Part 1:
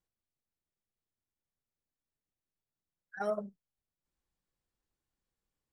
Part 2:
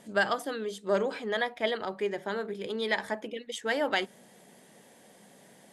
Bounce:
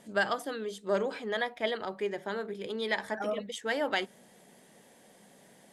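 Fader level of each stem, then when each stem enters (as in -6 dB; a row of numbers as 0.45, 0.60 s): 0.0, -2.0 dB; 0.00, 0.00 s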